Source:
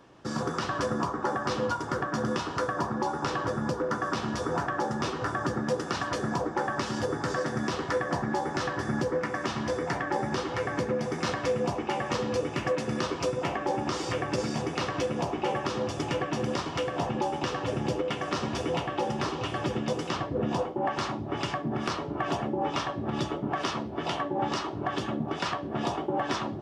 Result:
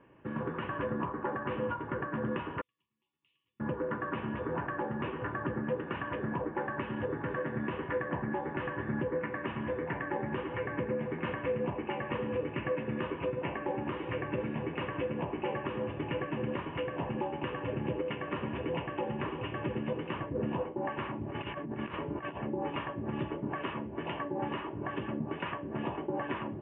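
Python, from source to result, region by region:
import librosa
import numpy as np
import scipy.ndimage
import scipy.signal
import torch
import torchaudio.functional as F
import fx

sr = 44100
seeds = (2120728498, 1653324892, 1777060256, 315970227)

y = fx.chain(x, sr, fx.cheby2_highpass(hz=1700.0, order=4, stop_db=50),
    fx.air_absorb(metres=260.0), at=(2.61, 3.6))
y = fx.chain(y, sr, fx.high_shelf(hz=3800.0, db=6.5),
    fx.over_compress(threshold_db=-32.0, ratio=-0.5), at=(21.21, 22.38))
y = scipy.signal.sosfilt(scipy.signal.butter(12, 2900.0, 'lowpass', fs=sr, output='sos'), y)
y = fx.peak_eq(y, sr, hz=730.0, db=-10.5, octaves=0.22)
y = fx.notch(y, sr, hz=1300.0, q=6.1)
y = y * librosa.db_to_amplitude(-4.0)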